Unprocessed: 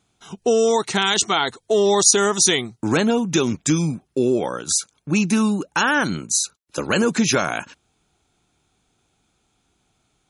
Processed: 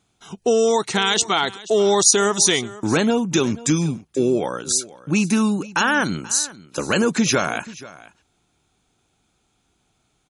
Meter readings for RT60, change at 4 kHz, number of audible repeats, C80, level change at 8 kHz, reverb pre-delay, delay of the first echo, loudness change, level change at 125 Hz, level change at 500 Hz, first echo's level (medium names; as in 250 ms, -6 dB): no reverb, 0.0 dB, 1, no reverb, 0.0 dB, no reverb, 483 ms, 0.0 dB, 0.0 dB, 0.0 dB, -19.0 dB